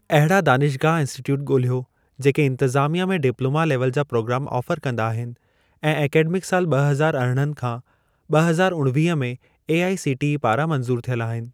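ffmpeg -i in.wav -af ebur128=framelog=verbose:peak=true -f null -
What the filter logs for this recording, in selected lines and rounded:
Integrated loudness:
  I:         -21.1 LUFS
  Threshold: -31.4 LUFS
Loudness range:
  LRA:         1.9 LU
  Threshold: -41.7 LUFS
  LRA low:   -22.6 LUFS
  LRA high:  -20.7 LUFS
True peak:
  Peak:       -3.0 dBFS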